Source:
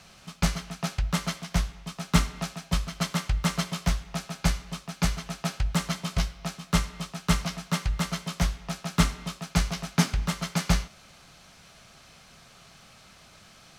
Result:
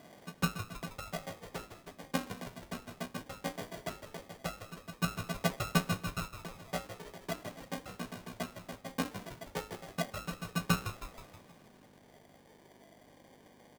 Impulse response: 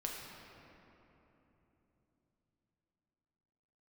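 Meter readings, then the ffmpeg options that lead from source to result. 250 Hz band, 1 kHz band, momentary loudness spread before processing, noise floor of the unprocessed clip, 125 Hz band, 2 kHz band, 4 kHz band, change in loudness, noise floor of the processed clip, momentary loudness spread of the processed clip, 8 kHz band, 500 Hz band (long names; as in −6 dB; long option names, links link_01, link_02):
−9.5 dB, −6.5 dB, 9 LU, −54 dBFS, −12.0 dB, −7.0 dB, −10.5 dB, −10.0 dB, −61 dBFS, 15 LU, −12.0 dB, −3.0 dB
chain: -filter_complex "[0:a]acrossover=split=1000[link_01][link_02];[link_01]aphaser=in_gain=1:out_gain=1:delay=4.2:decay=0.72:speed=0.18:type=sinusoidal[link_03];[link_02]acompressor=threshold=-47dB:ratio=6[link_04];[link_03][link_04]amix=inputs=2:normalize=0,acrusher=samples=33:mix=1:aa=0.000001,aeval=exprs='val(0)+0.00562*(sin(2*PI*50*n/s)+sin(2*PI*2*50*n/s)/2+sin(2*PI*3*50*n/s)/3+sin(2*PI*4*50*n/s)/4+sin(2*PI*5*50*n/s)/5)':channel_layout=same,highpass=270,asplit=2[link_05][link_06];[link_06]asplit=6[link_07][link_08][link_09][link_10][link_11][link_12];[link_07]adelay=159,afreqshift=-67,volume=-10.5dB[link_13];[link_08]adelay=318,afreqshift=-134,volume=-16.2dB[link_14];[link_09]adelay=477,afreqshift=-201,volume=-21.9dB[link_15];[link_10]adelay=636,afreqshift=-268,volume=-27.5dB[link_16];[link_11]adelay=795,afreqshift=-335,volume=-33.2dB[link_17];[link_12]adelay=954,afreqshift=-402,volume=-38.9dB[link_18];[link_13][link_14][link_15][link_16][link_17][link_18]amix=inputs=6:normalize=0[link_19];[link_05][link_19]amix=inputs=2:normalize=0,volume=-5.5dB"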